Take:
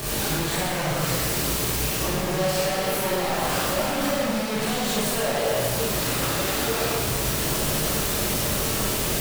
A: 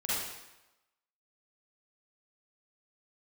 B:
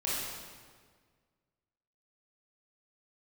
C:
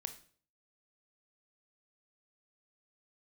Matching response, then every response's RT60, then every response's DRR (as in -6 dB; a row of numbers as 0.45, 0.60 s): B; 1.0, 1.7, 0.50 s; -10.0, -8.0, 8.0 dB